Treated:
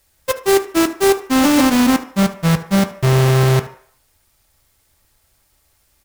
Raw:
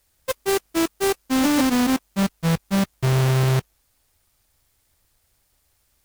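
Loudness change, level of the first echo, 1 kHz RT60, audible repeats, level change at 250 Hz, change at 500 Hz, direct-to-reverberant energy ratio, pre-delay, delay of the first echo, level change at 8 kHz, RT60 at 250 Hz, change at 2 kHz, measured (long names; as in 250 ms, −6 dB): +6.0 dB, −17.0 dB, 0.60 s, 1, +6.0 dB, +8.0 dB, 5.5 dB, 3 ms, 74 ms, +5.5 dB, 0.40 s, +6.5 dB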